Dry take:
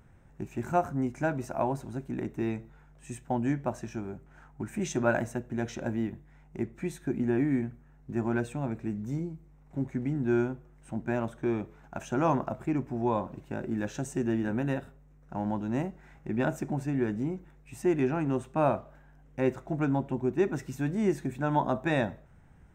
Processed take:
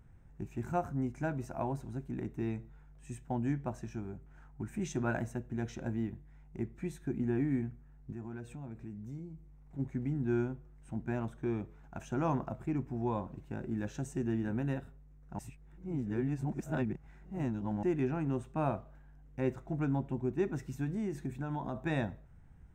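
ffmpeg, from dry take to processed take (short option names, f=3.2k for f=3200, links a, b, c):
-filter_complex "[0:a]asplit=3[a][b][c];[a]afade=t=out:st=8.12:d=0.02[d];[b]acompressor=threshold=-42dB:ratio=2:attack=3.2:release=140:knee=1:detection=peak,afade=t=in:st=8.12:d=0.02,afade=t=out:st=9.78:d=0.02[e];[c]afade=t=in:st=9.78:d=0.02[f];[d][e][f]amix=inputs=3:normalize=0,asettb=1/sr,asplit=3[g][h][i];[g]atrim=end=20.844[j];[h]atrim=start=20.84:end=21.85,asetpts=PTS-STARTPTS,afade=t=in:d=0.004:c=qsin,afade=t=out:st=1.006:d=0.004:c=qsin,acompressor=threshold=-27dB:ratio=4:attack=3.2:release=140:knee=1:detection=peak[k];[i]atrim=start=21.846[l];[j][k]acrossfade=d=0.004:c1=hsin:c2=qsin[m];[m][l]acrossfade=d=0.004:c1=qsin:c2=hsin,asplit=3[n][o][p];[n]atrim=end=15.392[q];[o]atrim=start=15.388:end=17.832,asetpts=PTS-STARTPTS,areverse[r];[p]atrim=start=17.828[s];[q][r]acrossfade=d=0.004:c1=hsin:c2=hsin[t];[t][s]acrossfade=d=0.004:c1=hsin:c2=hsin,lowshelf=f=150:g=10,bandreject=f=580:w=12,volume=-7.5dB"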